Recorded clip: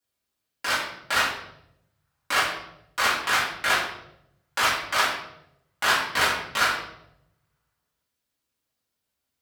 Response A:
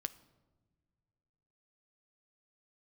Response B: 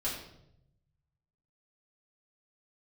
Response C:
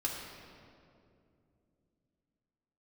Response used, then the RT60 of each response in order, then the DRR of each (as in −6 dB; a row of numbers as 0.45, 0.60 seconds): B; non-exponential decay, 0.75 s, 2.6 s; 12.0, −8.0, −3.5 decibels